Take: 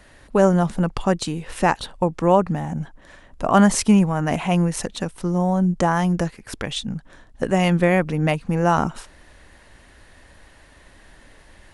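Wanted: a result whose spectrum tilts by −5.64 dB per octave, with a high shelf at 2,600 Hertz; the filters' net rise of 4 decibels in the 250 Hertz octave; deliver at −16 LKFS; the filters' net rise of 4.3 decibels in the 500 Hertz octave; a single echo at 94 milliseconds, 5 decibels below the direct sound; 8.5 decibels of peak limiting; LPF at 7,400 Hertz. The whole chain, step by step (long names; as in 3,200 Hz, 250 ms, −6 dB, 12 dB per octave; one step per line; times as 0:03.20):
low-pass filter 7,400 Hz
parametric band 250 Hz +5.5 dB
parametric band 500 Hz +3.5 dB
high-shelf EQ 2,600 Hz +8 dB
brickwall limiter −7.5 dBFS
single-tap delay 94 ms −5 dB
level +3 dB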